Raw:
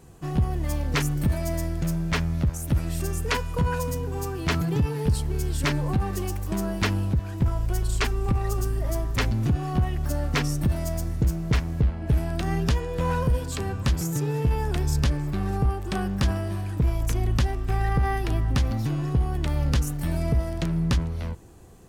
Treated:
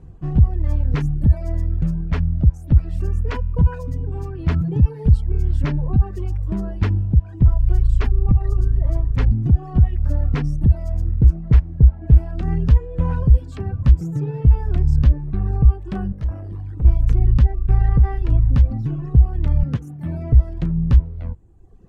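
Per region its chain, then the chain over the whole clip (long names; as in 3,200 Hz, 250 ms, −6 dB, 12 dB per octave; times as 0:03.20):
0:16.12–0:16.85: notch filter 2,500 Hz + floating-point word with a short mantissa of 4 bits + tube saturation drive 28 dB, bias 0.6
0:19.63–0:20.33: high-pass filter 100 Hz 24 dB per octave + notch filter 7,900 Hz, Q 16 + dynamic equaliser 4,700 Hz, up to −6 dB, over −53 dBFS, Q 1.8
whole clip: RIAA equalisation playback; reverb reduction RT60 1.2 s; high-shelf EQ 5,800 Hz −5.5 dB; level −3.5 dB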